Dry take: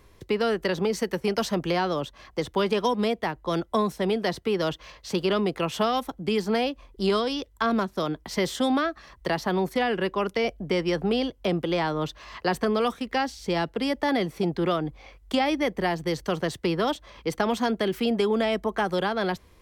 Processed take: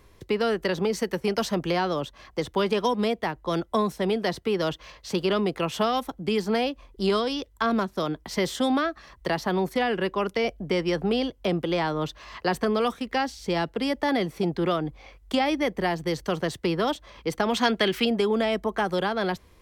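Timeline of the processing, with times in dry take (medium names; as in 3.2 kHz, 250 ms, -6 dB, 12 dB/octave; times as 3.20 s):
17.54–18.05 s: peaking EQ 2.8 kHz +9 dB 2.7 oct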